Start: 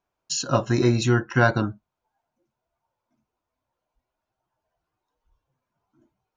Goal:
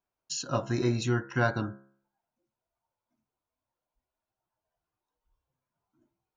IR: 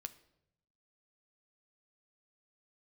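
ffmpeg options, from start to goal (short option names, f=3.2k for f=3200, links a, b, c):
-af "bandreject=f=67.68:t=h:w=4,bandreject=f=135.36:t=h:w=4,bandreject=f=203.04:t=h:w=4,bandreject=f=270.72:t=h:w=4,bandreject=f=338.4:t=h:w=4,bandreject=f=406.08:t=h:w=4,bandreject=f=473.76:t=h:w=4,bandreject=f=541.44:t=h:w=4,bandreject=f=609.12:t=h:w=4,bandreject=f=676.8:t=h:w=4,bandreject=f=744.48:t=h:w=4,bandreject=f=812.16:t=h:w=4,bandreject=f=879.84:t=h:w=4,bandreject=f=947.52:t=h:w=4,bandreject=f=1.0152k:t=h:w=4,bandreject=f=1.08288k:t=h:w=4,bandreject=f=1.15056k:t=h:w=4,bandreject=f=1.21824k:t=h:w=4,bandreject=f=1.28592k:t=h:w=4,bandreject=f=1.3536k:t=h:w=4,bandreject=f=1.42128k:t=h:w=4,bandreject=f=1.48896k:t=h:w=4,bandreject=f=1.55664k:t=h:w=4,bandreject=f=1.62432k:t=h:w=4,bandreject=f=1.692k:t=h:w=4,bandreject=f=1.75968k:t=h:w=4,bandreject=f=1.82736k:t=h:w=4,bandreject=f=1.89504k:t=h:w=4,bandreject=f=1.96272k:t=h:w=4,bandreject=f=2.0304k:t=h:w=4,volume=-7.5dB"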